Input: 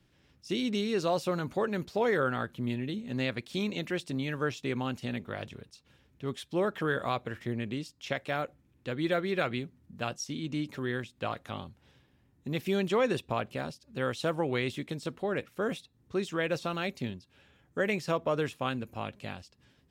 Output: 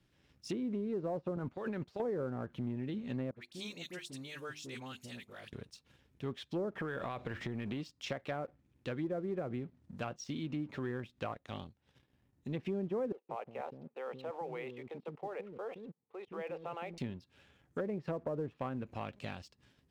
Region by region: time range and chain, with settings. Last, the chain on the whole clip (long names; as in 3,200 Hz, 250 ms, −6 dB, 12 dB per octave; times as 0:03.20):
0:01.36–0:02.00: high-pass filter 56 Hz + noise gate −38 dBFS, range −12 dB + compressor whose output falls as the input rises −35 dBFS
0:03.31–0:05.53: first-order pre-emphasis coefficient 0.8 + mains-hum notches 50/100/150/200/250/300/350/400 Hz + all-pass dispersion highs, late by 61 ms, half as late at 1,200 Hz
0:06.75–0:07.81: mu-law and A-law mismatch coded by mu + downward compressor, threshold −31 dBFS
0:11.33–0:12.54: dynamic equaliser 1,300 Hz, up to −5 dB, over −53 dBFS, Q 1.2 + transient designer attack −4 dB, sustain −9 dB
0:13.12–0:16.98: output level in coarse steps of 20 dB + loudspeaker in its box 210–2,500 Hz, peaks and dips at 290 Hz −5 dB, 470 Hz +6 dB, 820 Hz +9 dB, 1,600 Hz −8 dB + multiband delay without the direct sound highs, lows 170 ms, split 340 Hz
whole clip: treble cut that deepens with the level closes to 620 Hz, closed at −26 dBFS; downward compressor 2 to 1, threshold −38 dBFS; leveller curve on the samples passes 1; level −3.5 dB